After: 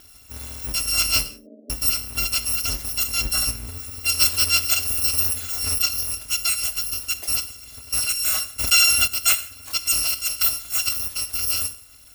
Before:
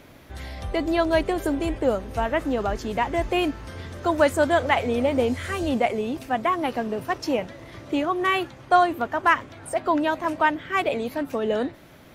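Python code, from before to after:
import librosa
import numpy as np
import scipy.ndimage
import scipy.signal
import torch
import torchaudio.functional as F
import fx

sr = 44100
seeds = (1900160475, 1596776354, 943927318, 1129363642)

y = fx.bit_reversed(x, sr, seeds[0], block=256)
y = fx.cheby1_bandpass(y, sr, low_hz=180.0, high_hz=620.0, order=5, at=(1.28, 1.7))
y = fx.low_shelf(y, sr, hz=380.0, db=6.5, at=(3.25, 3.99))
y = fx.rev_gated(y, sr, seeds[1], gate_ms=200, shape='falling', drr_db=10.0)
y = fx.env_flatten(y, sr, amount_pct=70, at=(8.58, 9.06), fade=0.02)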